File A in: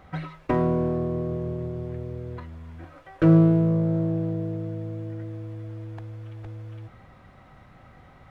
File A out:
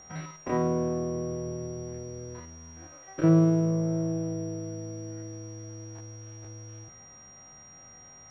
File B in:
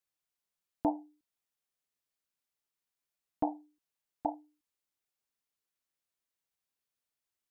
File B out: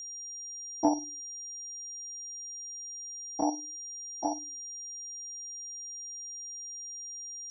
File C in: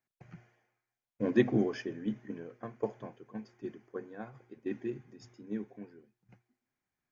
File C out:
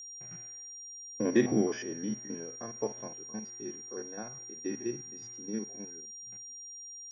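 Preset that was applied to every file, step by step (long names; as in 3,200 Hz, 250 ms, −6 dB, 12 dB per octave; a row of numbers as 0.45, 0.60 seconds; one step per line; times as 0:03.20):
spectrum averaged block by block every 50 ms
low-shelf EQ 94 Hz −10.5 dB
steady tone 5,700 Hz −47 dBFS
normalise the peak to −12 dBFS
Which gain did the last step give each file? −2.0, +8.0, +3.5 decibels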